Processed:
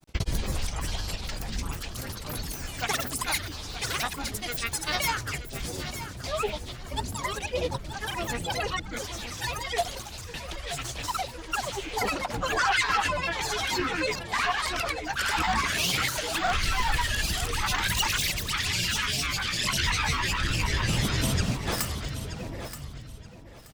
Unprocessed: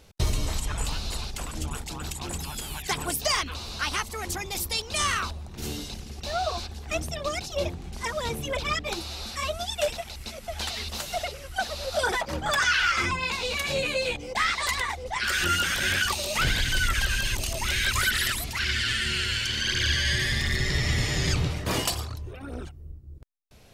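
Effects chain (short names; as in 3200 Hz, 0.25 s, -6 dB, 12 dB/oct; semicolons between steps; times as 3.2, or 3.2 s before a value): grains, pitch spread up and down by 12 st; feedback echo 0.927 s, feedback 24%, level -11.5 dB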